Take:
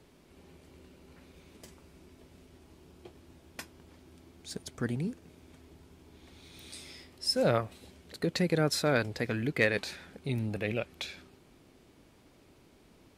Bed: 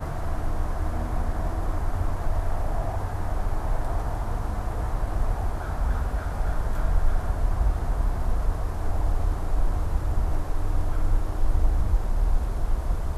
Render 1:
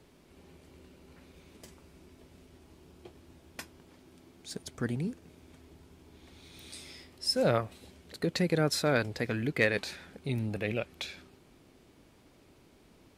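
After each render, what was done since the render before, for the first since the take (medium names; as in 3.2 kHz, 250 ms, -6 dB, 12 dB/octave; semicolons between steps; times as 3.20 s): 3.77–4.64 s: peaking EQ 68 Hz -10 dB 0.73 oct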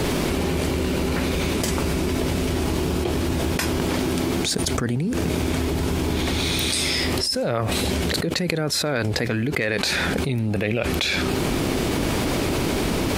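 level flattener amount 100%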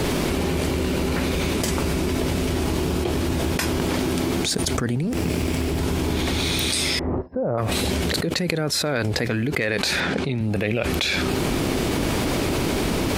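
5.03–5.78 s: comb filter that takes the minimum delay 0.39 ms; 6.99–7.58 s: low-pass 1.1 kHz 24 dB/octave; 10.00–10.41 s: band-pass 110–5400 Hz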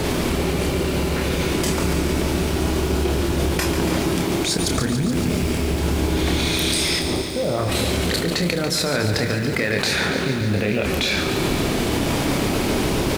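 doubling 29 ms -6 dB; bit-crushed delay 142 ms, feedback 80%, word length 7-bit, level -8.5 dB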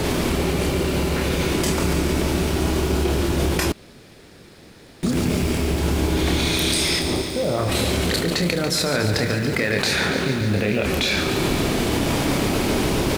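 3.72–5.03 s: room tone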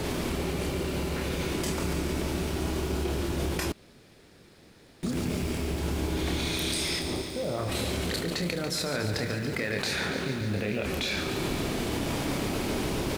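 trim -9 dB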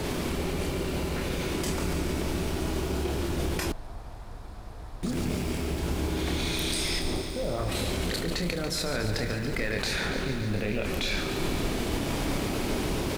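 add bed -14 dB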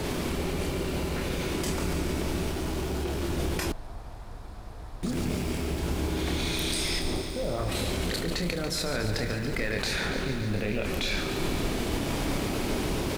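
2.51–3.23 s: hard clipper -26 dBFS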